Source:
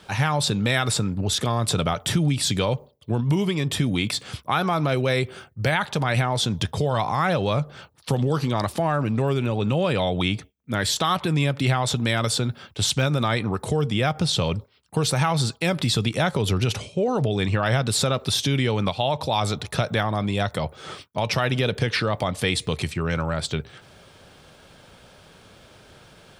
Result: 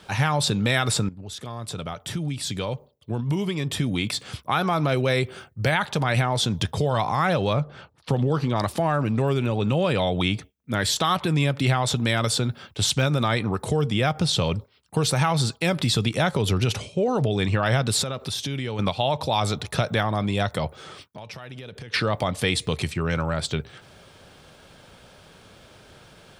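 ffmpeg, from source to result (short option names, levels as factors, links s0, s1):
-filter_complex "[0:a]asettb=1/sr,asplit=3[s0][s1][s2];[s0]atrim=end=7.534[s3];[s1]atrim=start=7.53:end=8.56,asetpts=PTS-STARTPTS,afade=t=in:d=0.004:c=qsin,afade=t=out:st=1.026:d=0.004:c=qsin,lowpass=f=2900:p=1[s4];[s2]atrim=start=8.556[s5];[s3][s4]acrossfade=d=0.004:c1=hsin:c2=qsin[s6];[s6][s5]acrossfade=d=0.004:c1=qsin:c2=hsin,asettb=1/sr,asplit=3[s7][s8][s9];[s7]atrim=end=18.024[s10];[s8]atrim=start=18.02:end=18.79,asetpts=PTS-STARTPTS,afade=t=in:d=0.004:c=qsin,afade=t=out:st=0.766:d=0.004:c=qsin,acompressor=threshold=0.0316:ratio=2:attack=3.2:release=140:knee=1:detection=peak[s11];[s9]atrim=start=18.786[s12];[s10][s11]acrossfade=d=0.004:c1=hsin:c2=qsin[s13];[s13][s12]acrossfade=d=0.004:c1=qsin:c2=hsin,asettb=1/sr,asplit=3[s14][s15][s16];[s14]atrim=end=20.764[s17];[s15]atrim=start=20.76:end=21.94,asetpts=PTS-STARTPTS,afade=t=in:d=0.004:c=qsin,afade=t=out:st=1.176:d=0.004:c=qsin,acompressor=threshold=0.0126:ratio=4:attack=3.2:release=140:knee=1:detection=peak[s18];[s16]atrim=start=21.936[s19];[s17][s18]acrossfade=d=0.004:c1=hsin:c2=qsin[s20];[s20][s19]acrossfade=d=0.004:c1=qsin:c2=hsin,asplit=2[s21][s22];[s21]atrim=end=1.09,asetpts=PTS-STARTPTS,afade=t=out:st=1.086:d=0.004:c=hsin:silence=0.177828[s23];[s22]atrim=start=1.09,asetpts=PTS-STARTPTS,afade=t=in:d=3.74:silence=0.177828[s24];[s23][s24]concat=n=2:v=0:a=1"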